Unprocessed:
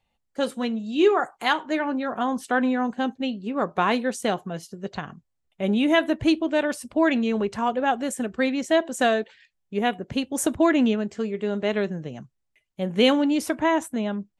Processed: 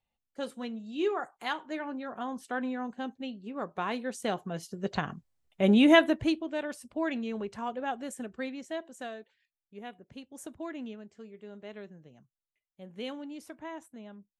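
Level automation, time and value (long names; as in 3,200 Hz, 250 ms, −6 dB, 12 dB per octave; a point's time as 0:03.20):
0:03.94 −11 dB
0:04.97 +1 dB
0:05.93 +1 dB
0:06.44 −11 dB
0:08.24 −11 dB
0:09.12 −20 dB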